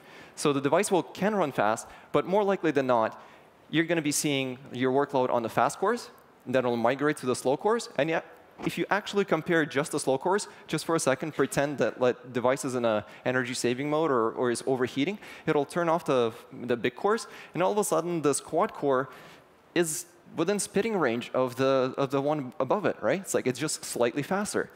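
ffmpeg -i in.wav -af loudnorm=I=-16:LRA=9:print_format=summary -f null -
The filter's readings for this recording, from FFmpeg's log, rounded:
Input Integrated:    -27.9 LUFS
Input True Peak:      -6.9 dBTP
Input LRA:             1.3 LU
Input Threshold:     -38.1 LUFS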